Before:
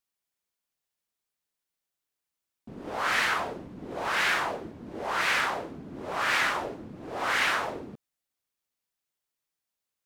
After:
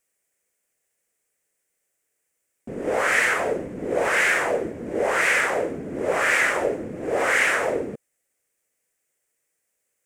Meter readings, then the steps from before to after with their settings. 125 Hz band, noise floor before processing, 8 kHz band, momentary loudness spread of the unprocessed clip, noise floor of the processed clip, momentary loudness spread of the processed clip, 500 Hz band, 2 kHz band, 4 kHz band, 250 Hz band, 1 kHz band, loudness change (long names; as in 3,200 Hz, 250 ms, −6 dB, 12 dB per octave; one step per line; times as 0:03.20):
+5.5 dB, below −85 dBFS, +8.0 dB, 16 LU, −77 dBFS, 10 LU, +12.5 dB, +7.0 dB, −1.0 dB, +8.5 dB, +3.0 dB, +5.5 dB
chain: downward compressor 2.5 to 1, threshold −30 dBFS, peak gain reduction 6 dB
octave-band graphic EQ 500/1,000/2,000/4,000/8,000 Hz +12/−6/+10/−11/+12 dB
level +6 dB